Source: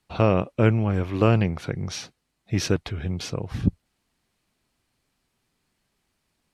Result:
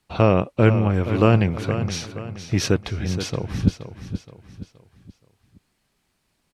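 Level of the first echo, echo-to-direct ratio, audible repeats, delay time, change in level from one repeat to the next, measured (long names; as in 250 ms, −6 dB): −10.5 dB, −9.5 dB, 4, 473 ms, −8.0 dB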